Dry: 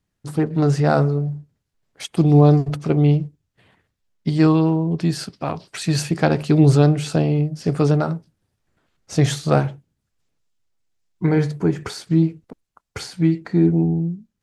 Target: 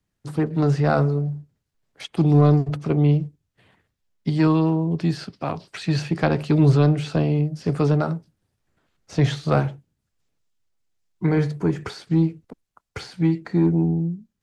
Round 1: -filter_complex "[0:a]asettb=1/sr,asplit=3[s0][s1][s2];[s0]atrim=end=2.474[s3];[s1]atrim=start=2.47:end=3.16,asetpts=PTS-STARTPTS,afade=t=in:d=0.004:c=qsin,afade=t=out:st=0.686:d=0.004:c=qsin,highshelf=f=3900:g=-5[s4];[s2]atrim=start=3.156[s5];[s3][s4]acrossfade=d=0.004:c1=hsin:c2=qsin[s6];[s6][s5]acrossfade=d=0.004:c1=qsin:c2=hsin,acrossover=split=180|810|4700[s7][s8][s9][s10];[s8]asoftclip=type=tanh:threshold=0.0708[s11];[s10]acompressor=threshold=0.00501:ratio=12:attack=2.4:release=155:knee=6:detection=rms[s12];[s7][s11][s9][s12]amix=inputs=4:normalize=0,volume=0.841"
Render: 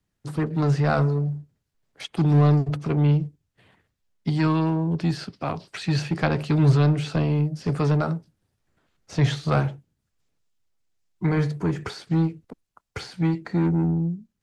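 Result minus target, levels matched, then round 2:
saturation: distortion +9 dB
-filter_complex "[0:a]asettb=1/sr,asplit=3[s0][s1][s2];[s0]atrim=end=2.474[s3];[s1]atrim=start=2.47:end=3.16,asetpts=PTS-STARTPTS,afade=t=in:d=0.004:c=qsin,afade=t=out:st=0.686:d=0.004:c=qsin,highshelf=f=3900:g=-5[s4];[s2]atrim=start=3.156[s5];[s3][s4]acrossfade=d=0.004:c1=hsin:c2=qsin[s6];[s6][s5]acrossfade=d=0.004:c1=qsin:c2=hsin,acrossover=split=180|810|4700[s7][s8][s9][s10];[s8]asoftclip=type=tanh:threshold=0.237[s11];[s10]acompressor=threshold=0.00501:ratio=12:attack=2.4:release=155:knee=6:detection=rms[s12];[s7][s11][s9][s12]amix=inputs=4:normalize=0,volume=0.841"

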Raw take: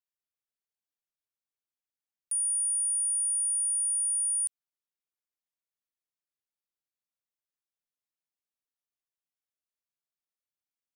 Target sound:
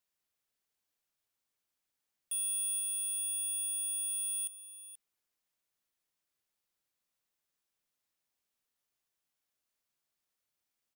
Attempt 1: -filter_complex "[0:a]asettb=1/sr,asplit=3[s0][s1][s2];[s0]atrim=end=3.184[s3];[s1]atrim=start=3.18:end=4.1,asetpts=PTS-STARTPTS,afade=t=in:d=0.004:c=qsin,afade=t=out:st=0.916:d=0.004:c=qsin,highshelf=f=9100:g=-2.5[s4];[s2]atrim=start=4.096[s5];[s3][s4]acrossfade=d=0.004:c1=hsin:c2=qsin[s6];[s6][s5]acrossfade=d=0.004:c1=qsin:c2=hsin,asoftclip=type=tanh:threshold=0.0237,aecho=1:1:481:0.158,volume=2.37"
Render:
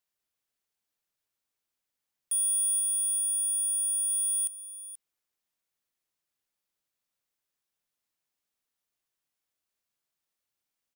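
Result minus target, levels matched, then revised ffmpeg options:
saturation: distortion -5 dB
-filter_complex "[0:a]asettb=1/sr,asplit=3[s0][s1][s2];[s0]atrim=end=3.184[s3];[s1]atrim=start=3.18:end=4.1,asetpts=PTS-STARTPTS,afade=t=in:d=0.004:c=qsin,afade=t=out:st=0.916:d=0.004:c=qsin,highshelf=f=9100:g=-2.5[s4];[s2]atrim=start=4.096[s5];[s3][s4]acrossfade=d=0.004:c1=hsin:c2=qsin[s6];[s6][s5]acrossfade=d=0.004:c1=qsin:c2=hsin,asoftclip=type=tanh:threshold=0.00891,aecho=1:1:481:0.158,volume=2.37"

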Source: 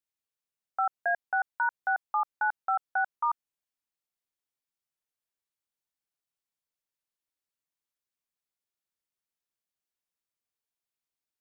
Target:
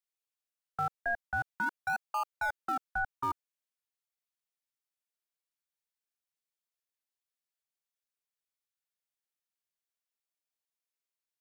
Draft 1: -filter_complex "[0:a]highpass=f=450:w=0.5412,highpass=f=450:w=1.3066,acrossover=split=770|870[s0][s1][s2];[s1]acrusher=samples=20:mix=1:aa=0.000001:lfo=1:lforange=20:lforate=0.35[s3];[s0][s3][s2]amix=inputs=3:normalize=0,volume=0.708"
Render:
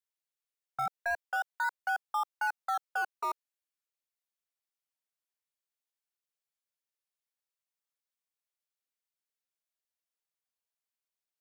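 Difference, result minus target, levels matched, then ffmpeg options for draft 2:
decimation with a swept rate: distortion -25 dB
-filter_complex "[0:a]highpass=f=450:w=0.5412,highpass=f=450:w=1.3066,acrossover=split=770|870[s0][s1][s2];[s1]acrusher=samples=48:mix=1:aa=0.000001:lfo=1:lforange=48:lforate=0.35[s3];[s0][s3][s2]amix=inputs=3:normalize=0,volume=0.708"

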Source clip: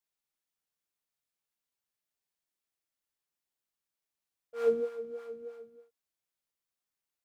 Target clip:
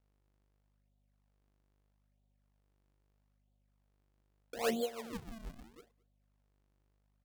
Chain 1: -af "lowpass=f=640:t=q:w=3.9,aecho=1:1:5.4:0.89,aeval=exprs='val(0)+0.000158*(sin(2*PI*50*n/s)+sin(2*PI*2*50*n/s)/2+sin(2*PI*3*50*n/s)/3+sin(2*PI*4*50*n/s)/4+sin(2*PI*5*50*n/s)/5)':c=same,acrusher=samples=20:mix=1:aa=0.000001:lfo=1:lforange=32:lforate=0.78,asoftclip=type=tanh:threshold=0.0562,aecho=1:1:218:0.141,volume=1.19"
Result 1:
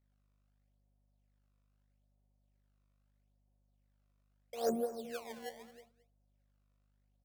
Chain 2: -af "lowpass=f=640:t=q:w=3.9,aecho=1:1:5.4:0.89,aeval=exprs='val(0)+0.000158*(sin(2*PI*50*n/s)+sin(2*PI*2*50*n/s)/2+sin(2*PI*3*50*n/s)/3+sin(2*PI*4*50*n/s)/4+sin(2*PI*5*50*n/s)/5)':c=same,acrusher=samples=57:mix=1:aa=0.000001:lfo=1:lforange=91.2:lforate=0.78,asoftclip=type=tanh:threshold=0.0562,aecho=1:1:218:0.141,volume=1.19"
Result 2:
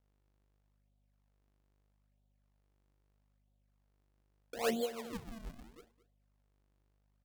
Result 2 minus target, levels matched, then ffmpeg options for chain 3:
echo-to-direct +8.5 dB
-af "lowpass=f=640:t=q:w=3.9,aecho=1:1:5.4:0.89,aeval=exprs='val(0)+0.000158*(sin(2*PI*50*n/s)+sin(2*PI*2*50*n/s)/2+sin(2*PI*3*50*n/s)/3+sin(2*PI*4*50*n/s)/4+sin(2*PI*5*50*n/s)/5)':c=same,acrusher=samples=57:mix=1:aa=0.000001:lfo=1:lforange=91.2:lforate=0.78,asoftclip=type=tanh:threshold=0.0562,aecho=1:1:218:0.0531,volume=1.19"

